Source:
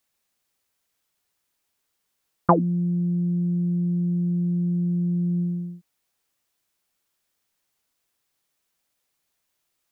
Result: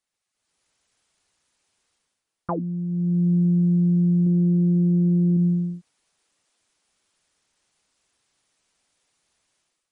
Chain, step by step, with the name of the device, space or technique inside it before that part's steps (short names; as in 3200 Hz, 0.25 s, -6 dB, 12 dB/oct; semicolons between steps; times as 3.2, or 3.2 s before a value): 4.26–5.37 dynamic EQ 430 Hz, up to +8 dB, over -45 dBFS, Q 1; low-bitrate web radio (AGC gain up to 13.5 dB; limiter -8 dBFS, peak gain reduction 7 dB; gain -6.5 dB; MP3 40 kbps 48000 Hz)